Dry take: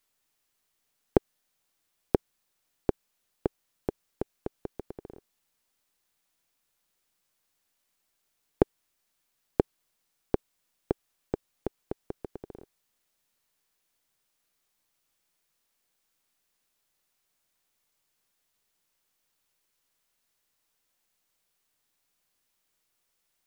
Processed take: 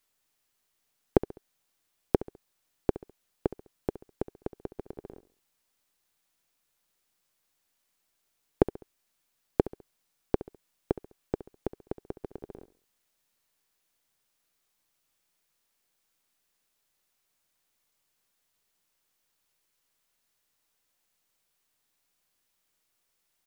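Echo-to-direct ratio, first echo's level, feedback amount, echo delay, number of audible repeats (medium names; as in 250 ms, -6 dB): -15.0 dB, -15.5 dB, 38%, 68 ms, 3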